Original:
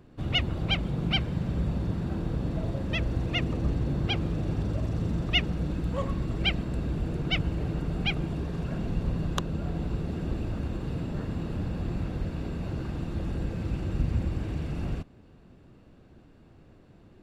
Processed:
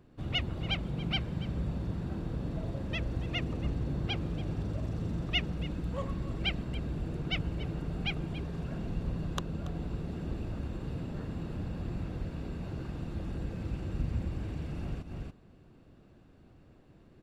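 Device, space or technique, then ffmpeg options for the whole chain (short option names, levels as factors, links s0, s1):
ducked delay: -filter_complex "[0:a]asplit=3[s0][s1][s2];[s1]adelay=282,volume=0.708[s3];[s2]apad=whole_len=772269[s4];[s3][s4]sidechaincompress=threshold=0.00794:ratio=4:attack=6.3:release=140[s5];[s0][s5]amix=inputs=2:normalize=0,volume=0.531"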